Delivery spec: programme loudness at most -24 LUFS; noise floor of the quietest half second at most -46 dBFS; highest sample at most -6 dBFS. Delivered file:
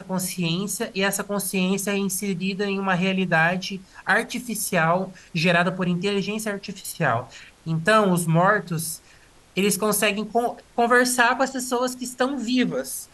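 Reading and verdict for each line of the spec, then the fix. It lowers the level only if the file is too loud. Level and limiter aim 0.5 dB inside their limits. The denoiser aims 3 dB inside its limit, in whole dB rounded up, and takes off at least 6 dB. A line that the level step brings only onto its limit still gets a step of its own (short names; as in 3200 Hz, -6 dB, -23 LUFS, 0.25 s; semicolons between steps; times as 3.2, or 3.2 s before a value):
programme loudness -23.0 LUFS: fail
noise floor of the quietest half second -52 dBFS: OK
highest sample -5.0 dBFS: fail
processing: gain -1.5 dB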